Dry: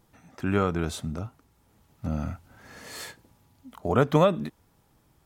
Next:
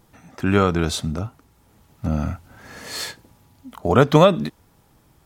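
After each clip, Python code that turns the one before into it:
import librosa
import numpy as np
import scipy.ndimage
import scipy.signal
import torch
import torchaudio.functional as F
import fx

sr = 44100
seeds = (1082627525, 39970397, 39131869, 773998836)

y = fx.dynamic_eq(x, sr, hz=4500.0, q=1.2, threshold_db=-50.0, ratio=4.0, max_db=6)
y = y * 10.0 ** (7.0 / 20.0)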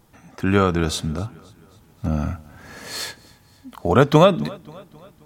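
y = fx.echo_feedback(x, sr, ms=266, feedback_pct=54, wet_db=-23)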